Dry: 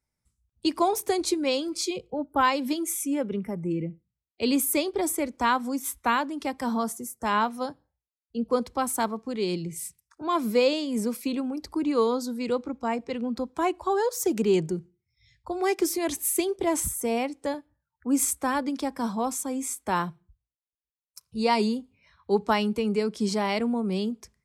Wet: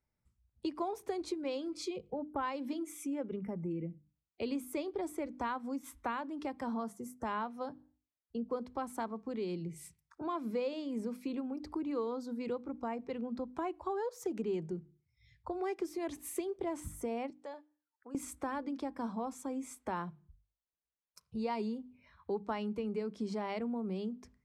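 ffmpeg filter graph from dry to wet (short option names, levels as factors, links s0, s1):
-filter_complex "[0:a]asettb=1/sr,asplit=3[s0][s1][s2];[s0]atrim=end=17.304[s3];[s1]atrim=start=17.3:end=18.15,asetpts=PTS-STARTPTS,afade=t=in:d=0.004:c=qsin,afade=t=out:st=0.846:d=0.004:c=qsin,equalizer=f=1600:w=0.43:g=-7,acompressor=threshold=0.0224:ratio=2.5:attack=3.2:release=140:knee=1:detection=peak,highpass=680,lowpass=6700[s4];[s2]atrim=start=18.146[s5];[s3][s4]acrossfade=d=0.004:c1=hsin:c2=qsin[s6];[s6][s5]acrossfade=d=0.004:c1=qsin:c2=hsin,lowpass=f=1600:p=1,bandreject=f=50:t=h:w=6,bandreject=f=100:t=h:w=6,bandreject=f=150:t=h:w=6,bandreject=f=200:t=h:w=6,bandreject=f=250:t=h:w=6,bandreject=f=300:t=h:w=6,acompressor=threshold=0.0112:ratio=2.5"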